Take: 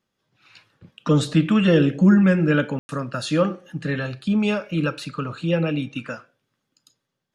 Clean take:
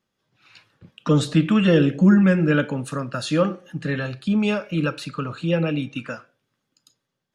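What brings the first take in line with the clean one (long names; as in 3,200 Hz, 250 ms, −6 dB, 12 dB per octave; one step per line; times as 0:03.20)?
ambience match 0:02.79–0:02.89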